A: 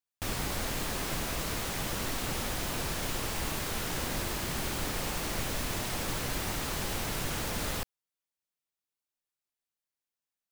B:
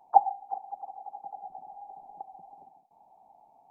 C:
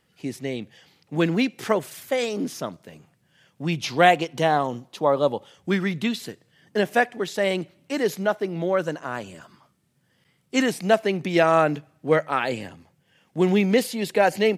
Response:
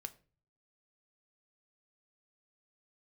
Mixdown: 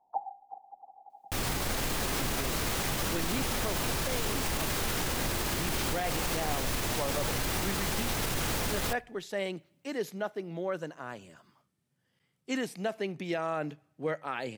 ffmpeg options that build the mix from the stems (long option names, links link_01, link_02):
-filter_complex "[0:a]adelay=1100,volume=2.5dB,asplit=2[link_01][link_02];[link_02]volume=-7dB[link_03];[1:a]lowpass=1200,volume=-10dB[link_04];[2:a]adelay=1950,volume=-11.5dB,asplit=2[link_05][link_06];[link_06]volume=-13.5dB[link_07];[3:a]atrim=start_sample=2205[link_08];[link_03][link_07]amix=inputs=2:normalize=0[link_09];[link_09][link_08]afir=irnorm=-1:irlink=0[link_10];[link_01][link_04][link_05][link_10]amix=inputs=4:normalize=0,alimiter=limit=-21.5dB:level=0:latency=1:release=31"